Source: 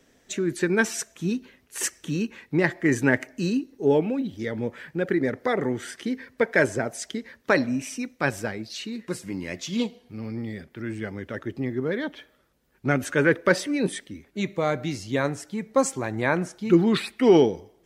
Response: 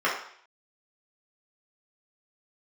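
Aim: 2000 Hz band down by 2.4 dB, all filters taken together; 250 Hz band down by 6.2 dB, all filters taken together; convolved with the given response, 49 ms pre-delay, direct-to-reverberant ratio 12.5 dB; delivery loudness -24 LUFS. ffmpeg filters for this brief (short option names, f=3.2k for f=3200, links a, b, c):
-filter_complex "[0:a]equalizer=f=250:t=o:g=-8.5,equalizer=f=2k:t=o:g=-3,asplit=2[a][b];[1:a]atrim=start_sample=2205,adelay=49[c];[b][c]afir=irnorm=-1:irlink=0,volume=-27.5dB[d];[a][d]amix=inputs=2:normalize=0,volume=5dB"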